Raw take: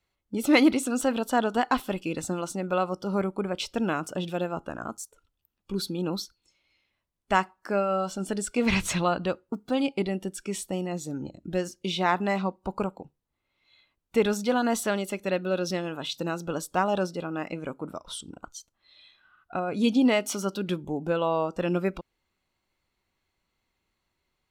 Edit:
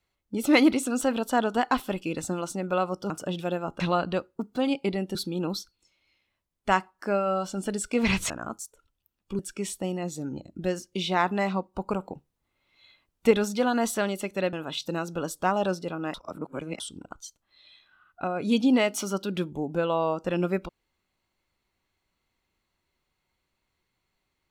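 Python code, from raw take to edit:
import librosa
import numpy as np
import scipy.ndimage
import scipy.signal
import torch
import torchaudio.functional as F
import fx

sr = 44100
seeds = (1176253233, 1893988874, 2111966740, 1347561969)

y = fx.edit(x, sr, fx.cut(start_s=3.1, length_s=0.89),
    fx.swap(start_s=4.69, length_s=1.09, other_s=8.93, other_length_s=1.35),
    fx.clip_gain(start_s=12.89, length_s=1.31, db=4.0),
    fx.cut(start_s=15.42, length_s=0.43),
    fx.reverse_span(start_s=17.46, length_s=0.66), tone=tone)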